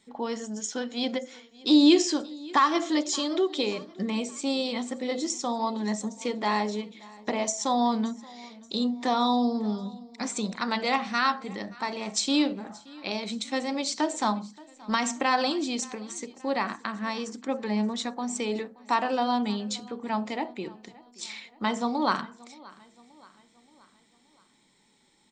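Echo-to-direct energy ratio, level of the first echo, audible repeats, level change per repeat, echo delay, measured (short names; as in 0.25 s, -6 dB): -21.0 dB, -22.5 dB, 3, -5.5 dB, 0.576 s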